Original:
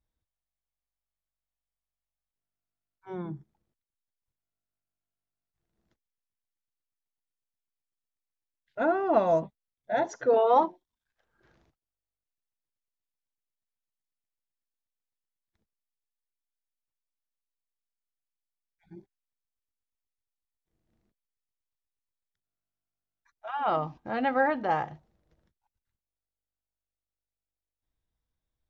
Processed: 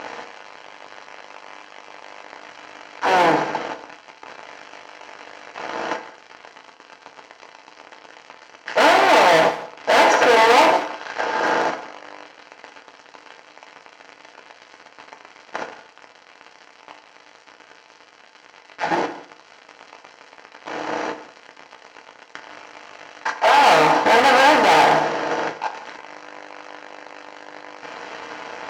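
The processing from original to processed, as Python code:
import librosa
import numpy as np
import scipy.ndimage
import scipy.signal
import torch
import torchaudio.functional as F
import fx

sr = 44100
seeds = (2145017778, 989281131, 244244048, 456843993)

y = fx.bin_compress(x, sr, power=0.4)
y = fx.leveller(y, sr, passes=5)
y = scipy.signal.sosfilt(scipy.signal.butter(4, 5900.0, 'lowpass', fs=sr, output='sos'), y)
y = fx.notch(y, sr, hz=3600.0, q=8.4)
y = fx.doubler(y, sr, ms=17.0, db=-12.0)
y = np.clip(y, -10.0 ** (-9.5 / 20.0), 10.0 ** (-9.5 / 20.0))
y = fx.highpass(y, sr, hz=730.0, slope=6)
y = y + 10.0 ** (-17.5 / 20.0) * np.pad(y, (int(170 * sr / 1000.0), 0))[:len(y)]
y = fx.rev_fdn(y, sr, rt60_s=0.6, lf_ratio=0.8, hf_ratio=0.75, size_ms=20.0, drr_db=6.0)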